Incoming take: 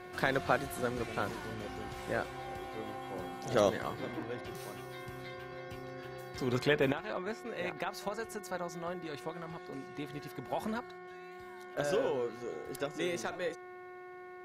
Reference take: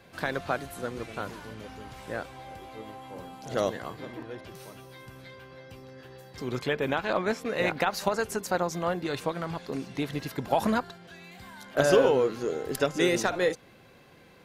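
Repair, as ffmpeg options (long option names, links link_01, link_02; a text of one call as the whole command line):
ffmpeg -i in.wav -af "bandreject=frequency=363.3:width_type=h:width=4,bandreject=frequency=726.6:width_type=h:width=4,bandreject=frequency=1089.9:width_type=h:width=4,bandreject=frequency=1453.2:width_type=h:width=4,bandreject=frequency=1816.5:width_type=h:width=4,bandreject=frequency=2179.8:width_type=h:width=4,asetnsamples=nb_out_samples=441:pad=0,asendcmd='6.92 volume volume 11dB',volume=0dB" out.wav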